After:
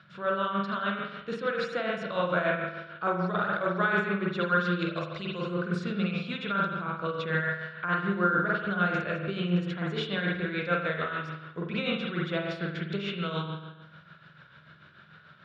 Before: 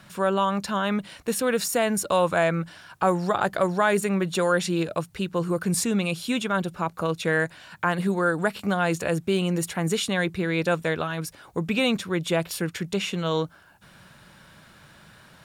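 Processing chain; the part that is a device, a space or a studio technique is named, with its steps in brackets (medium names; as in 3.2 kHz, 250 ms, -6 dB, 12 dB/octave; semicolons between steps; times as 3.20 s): 4.79–5.54 s: peaking EQ 6.4 kHz +12 dB 1.8 oct; combo amplifier with spring reverb and tremolo (spring tank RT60 1.1 s, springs 45 ms, chirp 40 ms, DRR -2 dB; tremolo 6.8 Hz, depth 54%; cabinet simulation 95–4300 Hz, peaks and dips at 150 Hz +6 dB, 260 Hz -6 dB, 850 Hz -9 dB, 1.4 kHz +10 dB, 3.6 kHz +4 dB); trim -7.5 dB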